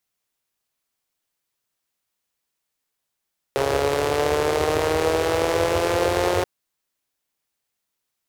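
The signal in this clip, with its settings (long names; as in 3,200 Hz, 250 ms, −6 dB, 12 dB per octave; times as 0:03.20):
pulse-train model of a four-cylinder engine, changing speed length 2.88 s, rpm 4,100, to 5,400, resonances 87/450 Hz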